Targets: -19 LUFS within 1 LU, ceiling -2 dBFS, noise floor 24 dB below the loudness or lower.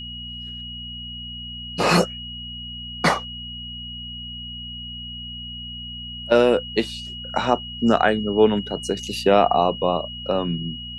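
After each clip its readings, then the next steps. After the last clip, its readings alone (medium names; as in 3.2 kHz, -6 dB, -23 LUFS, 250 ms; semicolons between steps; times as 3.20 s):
hum 60 Hz; highest harmonic 240 Hz; hum level -37 dBFS; steady tone 2.9 kHz; tone level -33 dBFS; loudness -23.5 LUFS; peak level -2.5 dBFS; loudness target -19.0 LUFS
-> de-hum 60 Hz, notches 4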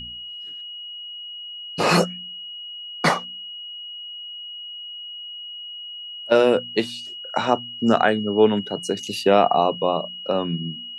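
hum not found; steady tone 2.9 kHz; tone level -33 dBFS
-> band-stop 2.9 kHz, Q 30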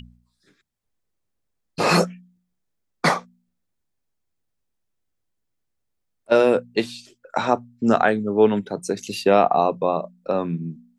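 steady tone not found; loudness -21.5 LUFS; peak level -3.0 dBFS; loudness target -19.0 LUFS
-> trim +2.5 dB; peak limiter -2 dBFS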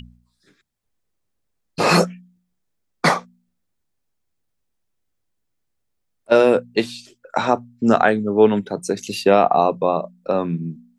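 loudness -19.0 LUFS; peak level -2.0 dBFS; noise floor -74 dBFS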